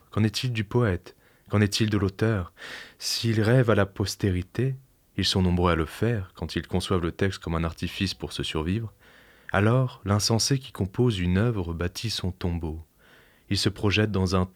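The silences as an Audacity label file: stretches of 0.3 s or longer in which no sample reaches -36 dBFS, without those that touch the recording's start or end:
1.100000	1.520000	silence
4.760000	5.180000	silence
8.880000	9.490000	silence
12.810000	13.510000	silence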